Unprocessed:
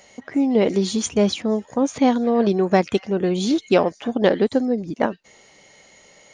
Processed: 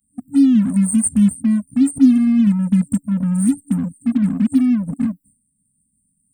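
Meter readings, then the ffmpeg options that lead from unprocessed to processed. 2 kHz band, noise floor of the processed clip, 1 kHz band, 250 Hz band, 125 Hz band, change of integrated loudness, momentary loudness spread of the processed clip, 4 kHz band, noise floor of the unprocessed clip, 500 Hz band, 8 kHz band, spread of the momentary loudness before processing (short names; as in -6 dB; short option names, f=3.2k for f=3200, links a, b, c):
under -10 dB, -68 dBFS, under -15 dB, +7.0 dB, +7.5 dB, +4.0 dB, 8 LU, under -10 dB, -52 dBFS, under -25 dB, +7.0 dB, 6 LU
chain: -filter_complex "[0:a]agate=range=-33dB:threshold=-41dB:ratio=3:detection=peak,crystalizer=i=4.5:c=0,afftfilt=real='re*(1-between(b*sr/4096,280,7500))':imag='im*(1-between(b*sr/4096,280,7500))':win_size=4096:overlap=0.75,asplit=2[a][b];[b]acrusher=bits=4:mix=0:aa=0.5,volume=-9dB[c];[a][c]amix=inputs=2:normalize=0,volume=5dB"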